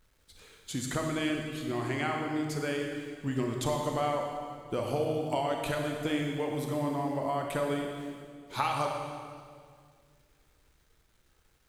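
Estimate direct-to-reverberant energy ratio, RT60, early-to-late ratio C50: 1.0 dB, 2.1 s, 2.5 dB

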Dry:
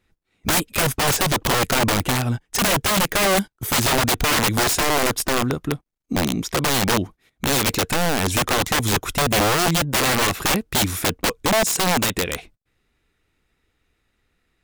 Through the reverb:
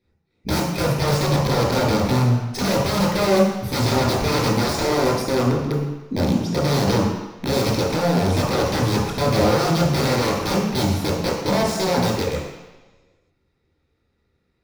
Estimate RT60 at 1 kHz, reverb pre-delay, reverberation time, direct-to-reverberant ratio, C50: 1.2 s, 15 ms, 1.1 s, -5.5 dB, 2.0 dB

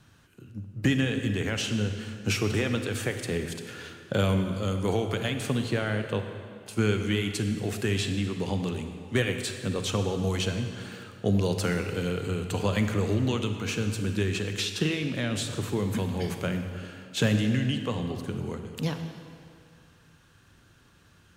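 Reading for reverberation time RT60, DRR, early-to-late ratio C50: 2.3 s, 6.0 dB, 6.5 dB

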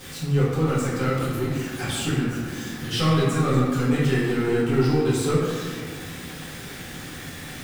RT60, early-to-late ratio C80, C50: 1.8 s, 1.5 dB, -0.5 dB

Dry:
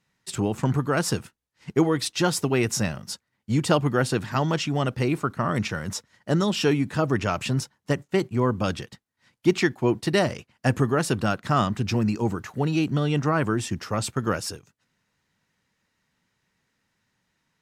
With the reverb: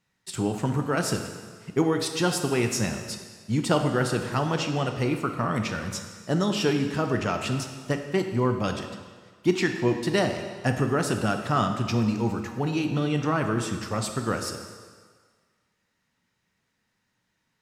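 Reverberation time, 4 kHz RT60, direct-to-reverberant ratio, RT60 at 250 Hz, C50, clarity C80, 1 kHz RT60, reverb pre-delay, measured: 1.6 s, 1.5 s, 5.0 dB, 1.5 s, 6.5 dB, 8.0 dB, 1.7 s, 4 ms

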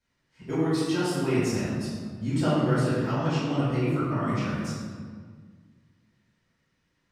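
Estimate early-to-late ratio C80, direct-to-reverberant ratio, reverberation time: 0.5 dB, -11.5 dB, 1.7 s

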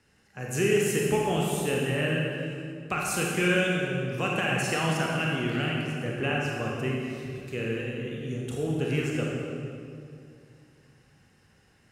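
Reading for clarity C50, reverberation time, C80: -1.0 dB, 2.4 s, 0.5 dB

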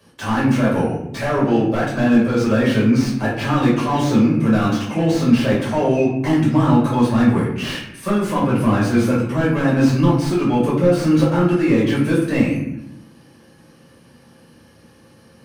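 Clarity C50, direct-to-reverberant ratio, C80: 3.5 dB, -7.0 dB, 6.5 dB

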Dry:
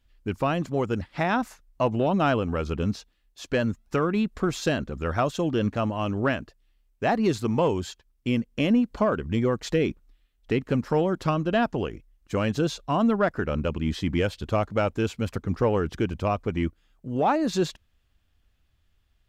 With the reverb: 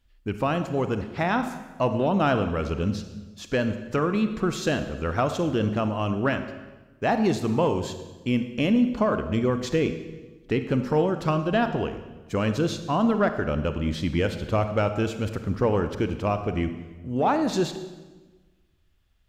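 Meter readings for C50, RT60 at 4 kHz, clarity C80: 9.5 dB, 1.1 s, 11.0 dB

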